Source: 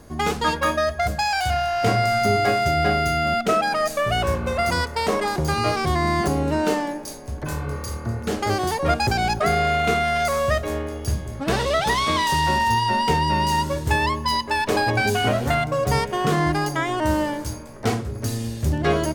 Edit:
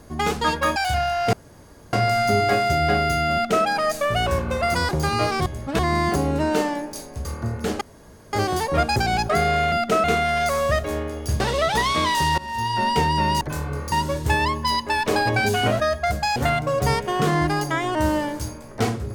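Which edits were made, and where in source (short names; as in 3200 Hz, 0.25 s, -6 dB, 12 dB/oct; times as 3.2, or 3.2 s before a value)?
0.76–1.32 move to 15.41
1.89 insert room tone 0.60 s
3.29–3.61 copy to 9.83
4.85–5.34 cut
7.37–7.88 move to 13.53
8.44 insert room tone 0.52 s
11.19–11.52 move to 5.91
12.5–12.98 fade in, from -21 dB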